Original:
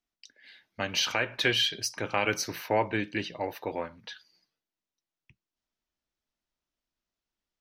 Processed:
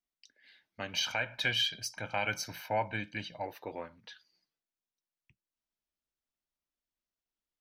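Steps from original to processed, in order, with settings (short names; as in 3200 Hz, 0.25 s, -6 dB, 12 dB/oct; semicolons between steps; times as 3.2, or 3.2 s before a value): 0.93–3.46 comb 1.3 ms, depth 70%; gain -7.5 dB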